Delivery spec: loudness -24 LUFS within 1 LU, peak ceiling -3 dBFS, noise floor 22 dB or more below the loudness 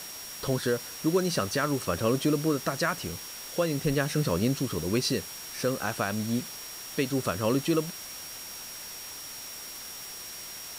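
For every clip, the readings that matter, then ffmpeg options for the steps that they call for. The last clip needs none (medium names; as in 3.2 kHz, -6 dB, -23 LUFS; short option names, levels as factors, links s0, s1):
steady tone 5.6 kHz; tone level -43 dBFS; noise floor -41 dBFS; noise floor target -52 dBFS; loudness -30.0 LUFS; peak level -14.0 dBFS; loudness target -24.0 LUFS
-> -af "bandreject=f=5600:w=30"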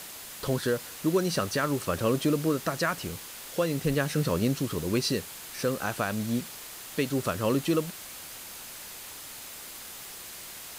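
steady tone not found; noise floor -43 dBFS; noise floor target -52 dBFS
-> -af "afftdn=nr=9:nf=-43"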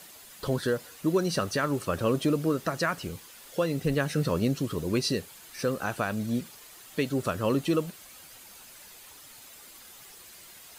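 noise floor -50 dBFS; noise floor target -51 dBFS
-> -af "afftdn=nr=6:nf=-50"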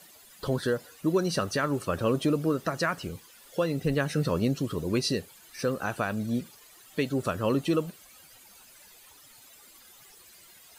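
noise floor -54 dBFS; loudness -29.0 LUFS; peak level -14.5 dBFS; loudness target -24.0 LUFS
-> -af "volume=1.78"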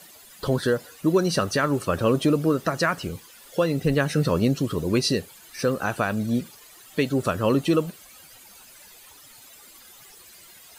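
loudness -24.0 LUFS; peak level -9.5 dBFS; noise floor -49 dBFS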